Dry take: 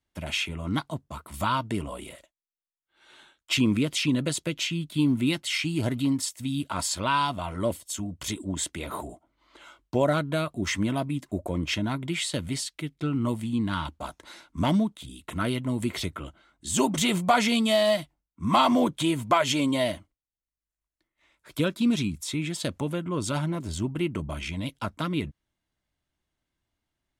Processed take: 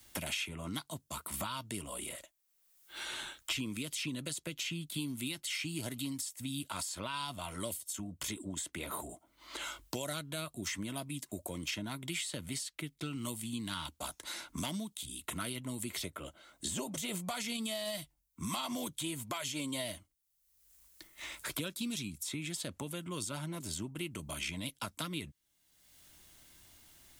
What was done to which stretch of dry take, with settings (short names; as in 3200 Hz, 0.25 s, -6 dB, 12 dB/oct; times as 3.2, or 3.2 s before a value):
16.04–17.15 bell 560 Hz +8.5 dB 0.63 oct
whole clip: pre-emphasis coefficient 0.8; limiter -26.5 dBFS; three-band squash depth 100%